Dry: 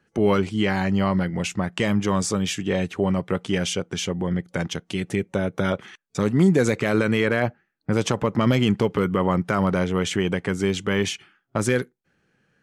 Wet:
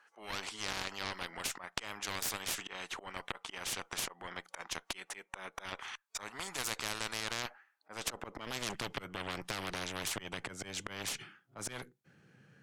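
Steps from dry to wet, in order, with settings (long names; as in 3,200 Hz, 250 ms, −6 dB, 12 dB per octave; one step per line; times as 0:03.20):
volume swells 285 ms
high-pass filter sweep 970 Hz → 120 Hz, 0:07.71–0:08.88
harmonic generator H 4 −10 dB, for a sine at −6.5 dBFS
every bin compressed towards the loudest bin 4 to 1
level −6.5 dB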